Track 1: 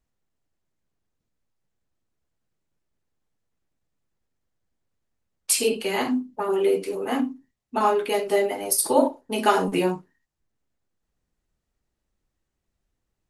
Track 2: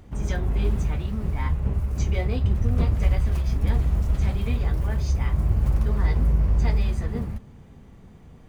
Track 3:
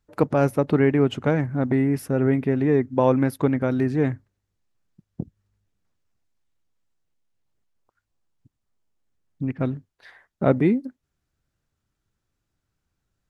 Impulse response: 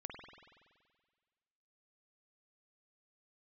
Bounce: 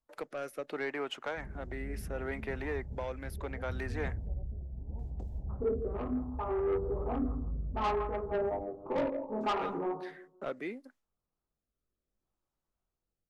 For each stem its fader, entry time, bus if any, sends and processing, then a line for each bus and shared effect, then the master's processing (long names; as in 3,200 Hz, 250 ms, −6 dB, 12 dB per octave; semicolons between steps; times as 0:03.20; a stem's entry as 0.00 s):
−1.0 dB, 0.00 s, no send, echo send −11 dB, Butterworth low-pass 1,300 Hz 72 dB per octave; tilt shelving filter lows −5.5 dB, about 640 Hz; chorus effect 0.25 Hz, delay 19 ms, depth 5.4 ms
−15.5 dB, 1.25 s, no send, no echo send, Butterworth low-pass 930 Hz 96 dB per octave
−3.5 dB, 0.00 s, no send, no echo send, noise gate with hold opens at −45 dBFS; high-pass filter 790 Hz 12 dB per octave; multiband upward and downward compressor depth 40%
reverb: not used
echo: repeating echo 163 ms, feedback 26%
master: soft clipping −23.5 dBFS, distortion −11 dB; rotating-speaker cabinet horn 0.7 Hz